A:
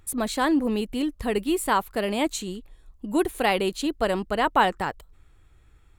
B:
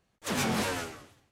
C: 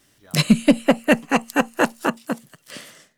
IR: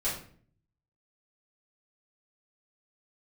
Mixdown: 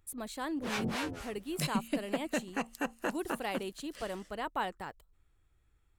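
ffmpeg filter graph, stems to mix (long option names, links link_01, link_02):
-filter_complex "[0:a]highshelf=frequency=8900:gain=5,volume=-14.5dB[link_01];[1:a]acrossover=split=4600[link_02][link_03];[link_03]acompressor=threshold=-45dB:ratio=4:attack=1:release=60[link_04];[link_02][link_04]amix=inputs=2:normalize=0,acrossover=split=530[link_05][link_06];[link_05]aeval=exprs='val(0)*(1-1/2+1/2*cos(2*PI*3.9*n/s))':channel_layout=same[link_07];[link_06]aeval=exprs='val(0)*(1-1/2-1/2*cos(2*PI*3.9*n/s))':channel_layout=same[link_08];[link_07][link_08]amix=inputs=2:normalize=0,adelay=350,volume=-1.5dB[link_09];[2:a]acompressor=threshold=-18dB:ratio=3,adelay=1250,volume=-12.5dB[link_10];[link_01][link_09][link_10]amix=inputs=3:normalize=0"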